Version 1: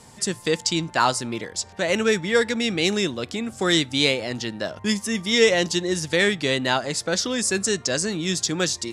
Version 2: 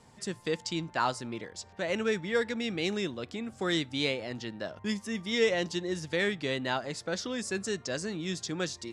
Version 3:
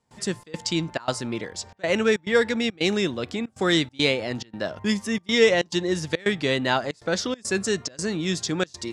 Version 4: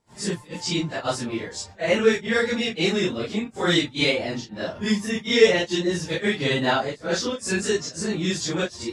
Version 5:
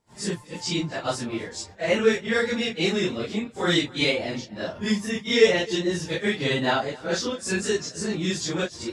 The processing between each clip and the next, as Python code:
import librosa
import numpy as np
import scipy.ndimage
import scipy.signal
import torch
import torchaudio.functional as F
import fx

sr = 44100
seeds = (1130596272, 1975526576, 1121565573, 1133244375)

y1 = fx.high_shelf(x, sr, hz=6100.0, db=-12.0)
y1 = y1 * 10.0 ** (-8.5 / 20.0)
y2 = fx.step_gate(y1, sr, bpm=139, pattern='.xxx.xxxx.xxxxxx', floor_db=-24.0, edge_ms=4.5)
y2 = y2 * 10.0 ** (8.5 / 20.0)
y3 = fx.phase_scramble(y2, sr, seeds[0], window_ms=100)
y3 = y3 * 10.0 ** (1.0 / 20.0)
y4 = y3 + 10.0 ** (-22.0 / 20.0) * np.pad(y3, (int(260 * sr / 1000.0), 0))[:len(y3)]
y4 = y4 * 10.0 ** (-1.5 / 20.0)